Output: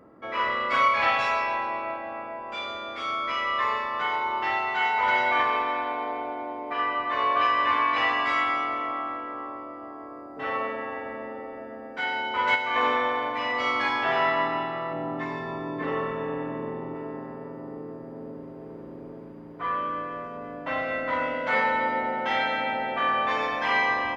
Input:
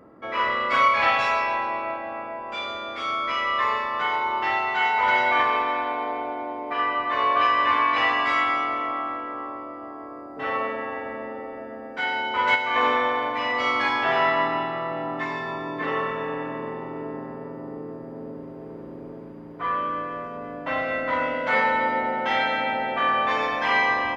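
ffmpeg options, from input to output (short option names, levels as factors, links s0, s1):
-filter_complex "[0:a]asettb=1/sr,asplit=3[s0][s1][s2];[s0]atrim=end=14.934[s3];[s1]atrim=start=14.93:end=16.95,asetpts=PTS-STARTPTS,afade=t=in:d=0.004:c=qsin,afade=t=out:st=2.016:d=0.004:c=qsin,tiltshelf=f=700:g=4.5[s4];[s2]atrim=start=16.946[s5];[s3][s4]acrossfade=d=0.004:c1=hsin:c2=qsin[s6];[s6][s5]acrossfade=d=0.004:c1=qsin:c2=hsin,volume=0.75"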